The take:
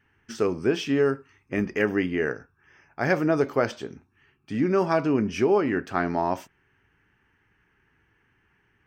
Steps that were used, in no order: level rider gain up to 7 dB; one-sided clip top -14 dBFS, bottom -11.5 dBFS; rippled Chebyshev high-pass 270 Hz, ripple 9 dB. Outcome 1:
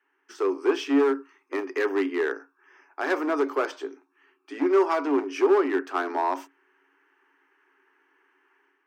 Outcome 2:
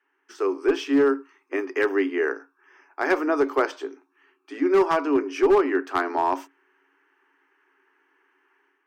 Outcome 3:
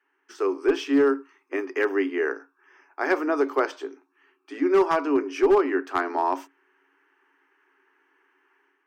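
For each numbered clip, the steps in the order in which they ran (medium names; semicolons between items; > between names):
level rider > one-sided clip > rippled Chebyshev high-pass; rippled Chebyshev high-pass > level rider > one-sided clip; level rider > rippled Chebyshev high-pass > one-sided clip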